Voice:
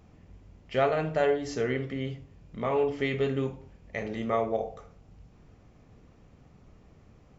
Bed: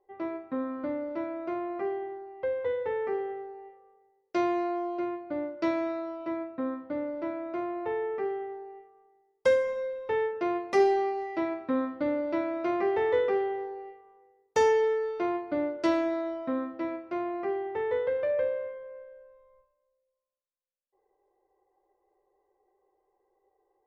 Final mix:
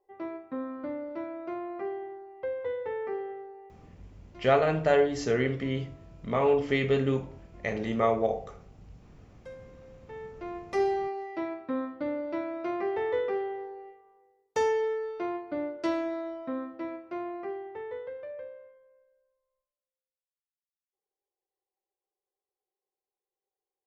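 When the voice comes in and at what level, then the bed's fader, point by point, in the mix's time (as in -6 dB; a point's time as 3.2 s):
3.70 s, +2.5 dB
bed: 3.89 s -3 dB
4.16 s -23 dB
9.64 s -23 dB
10.86 s -3.5 dB
17.29 s -3.5 dB
19.42 s -23 dB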